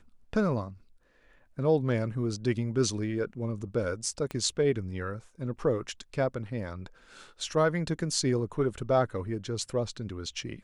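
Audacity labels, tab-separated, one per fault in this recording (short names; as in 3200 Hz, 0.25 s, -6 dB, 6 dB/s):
4.310000	4.310000	pop -22 dBFS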